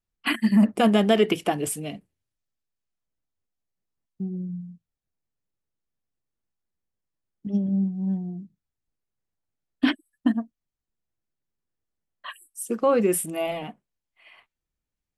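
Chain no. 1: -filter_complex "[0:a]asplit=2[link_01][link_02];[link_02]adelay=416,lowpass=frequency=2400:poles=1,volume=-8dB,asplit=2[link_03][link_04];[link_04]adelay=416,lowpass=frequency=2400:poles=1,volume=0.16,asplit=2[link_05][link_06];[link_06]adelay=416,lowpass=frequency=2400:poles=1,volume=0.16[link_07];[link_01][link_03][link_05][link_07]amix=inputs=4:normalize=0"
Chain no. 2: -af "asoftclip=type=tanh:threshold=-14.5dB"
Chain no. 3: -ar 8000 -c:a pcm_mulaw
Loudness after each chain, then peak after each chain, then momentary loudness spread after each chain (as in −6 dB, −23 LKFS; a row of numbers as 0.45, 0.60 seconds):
−25.0, −26.5, −24.5 LKFS; −7.0, −14.5, −7.0 dBFS; 21, 18, 21 LU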